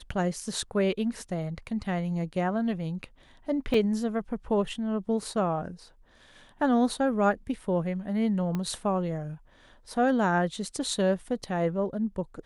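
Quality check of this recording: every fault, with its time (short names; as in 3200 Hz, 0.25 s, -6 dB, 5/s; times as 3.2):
3.74 gap 3.2 ms
8.55 pop -19 dBFS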